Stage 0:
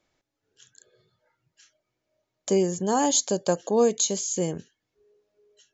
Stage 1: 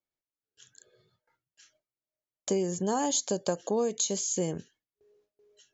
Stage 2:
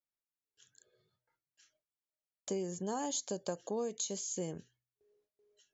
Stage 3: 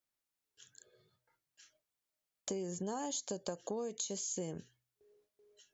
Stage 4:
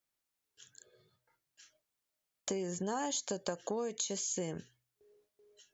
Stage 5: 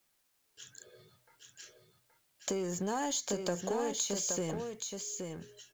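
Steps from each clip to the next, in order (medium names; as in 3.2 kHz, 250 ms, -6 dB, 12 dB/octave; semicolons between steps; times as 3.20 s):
gate with hold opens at -58 dBFS; compression 5:1, threshold -23 dBFS, peak gain reduction 7.5 dB; trim -1.5 dB
de-hum 61.35 Hz, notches 2; trim -8.5 dB
compression 3:1, threshold -43 dBFS, peak gain reduction 8.5 dB; trim +5 dB
dynamic bell 1.8 kHz, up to +7 dB, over -59 dBFS, Q 0.84; trim +2 dB
companding laws mixed up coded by mu; delay 823 ms -5.5 dB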